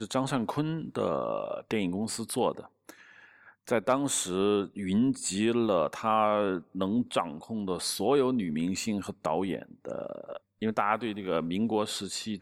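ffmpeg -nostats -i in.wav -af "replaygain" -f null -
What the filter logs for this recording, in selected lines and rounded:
track_gain = +9.9 dB
track_peak = 0.204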